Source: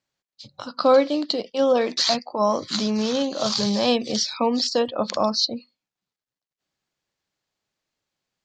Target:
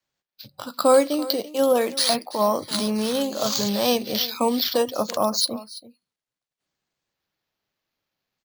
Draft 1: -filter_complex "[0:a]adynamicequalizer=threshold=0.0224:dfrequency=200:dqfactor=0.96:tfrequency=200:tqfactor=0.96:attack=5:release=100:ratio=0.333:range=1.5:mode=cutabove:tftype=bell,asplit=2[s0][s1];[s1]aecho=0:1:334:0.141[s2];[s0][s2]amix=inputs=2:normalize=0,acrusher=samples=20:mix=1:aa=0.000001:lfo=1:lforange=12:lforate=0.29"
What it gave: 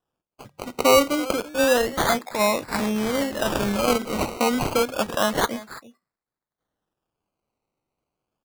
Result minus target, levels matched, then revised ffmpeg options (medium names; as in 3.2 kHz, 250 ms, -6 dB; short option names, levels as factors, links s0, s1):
decimation with a swept rate: distortion +11 dB
-filter_complex "[0:a]adynamicequalizer=threshold=0.0224:dfrequency=200:dqfactor=0.96:tfrequency=200:tqfactor=0.96:attack=5:release=100:ratio=0.333:range=1.5:mode=cutabove:tftype=bell,asplit=2[s0][s1];[s1]aecho=0:1:334:0.141[s2];[s0][s2]amix=inputs=2:normalize=0,acrusher=samples=4:mix=1:aa=0.000001:lfo=1:lforange=2.4:lforate=0.29"